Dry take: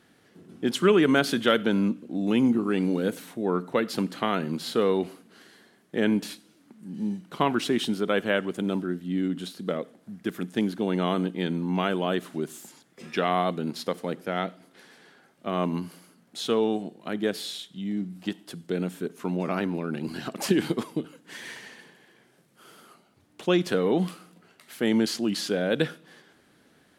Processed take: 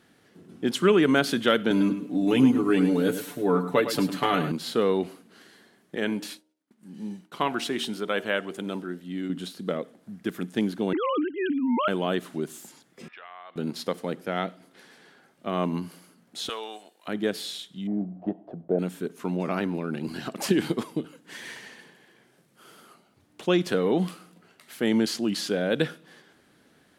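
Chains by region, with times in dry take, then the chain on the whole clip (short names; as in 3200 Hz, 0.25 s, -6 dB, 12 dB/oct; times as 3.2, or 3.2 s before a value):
1.7–4.52 high shelf 11000 Hz +7.5 dB + comb 6.9 ms, depth 94% + feedback echo 0.105 s, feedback 24%, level -10.5 dB
5.95–9.3 expander -46 dBFS + low shelf 360 Hz -8 dB + de-hum 77.61 Hz, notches 12
10.93–11.88 sine-wave speech + bell 1600 Hz +3 dB 2.4 oct
13.08–13.56 HPF 1300 Hz + compressor 5:1, threshold -37 dBFS + air absorption 440 m
16.49–17.08 HPF 1000 Hz + high shelf 7700 Hz +7 dB
17.87–18.79 block floating point 5-bit + synth low-pass 670 Hz, resonance Q 5.9
whole clip: dry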